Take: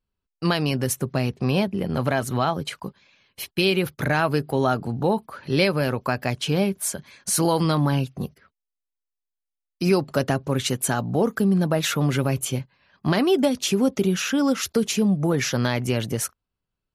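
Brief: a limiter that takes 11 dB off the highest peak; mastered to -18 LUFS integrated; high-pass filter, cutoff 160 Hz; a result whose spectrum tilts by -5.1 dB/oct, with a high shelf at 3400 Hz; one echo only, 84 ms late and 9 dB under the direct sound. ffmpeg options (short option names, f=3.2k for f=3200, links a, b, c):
-af "highpass=160,highshelf=f=3.4k:g=-8.5,alimiter=limit=-19.5dB:level=0:latency=1,aecho=1:1:84:0.355,volume=11.5dB"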